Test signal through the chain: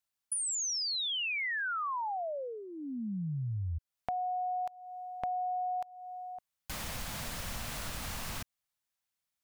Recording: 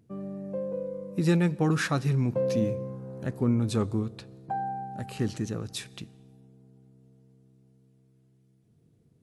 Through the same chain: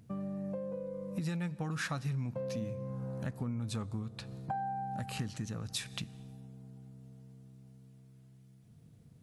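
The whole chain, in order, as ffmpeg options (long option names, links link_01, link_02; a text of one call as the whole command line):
ffmpeg -i in.wav -af "acompressor=threshold=-41dB:ratio=4,equalizer=frequency=370:width=1.9:gain=-11.5,volume=6.5dB" out.wav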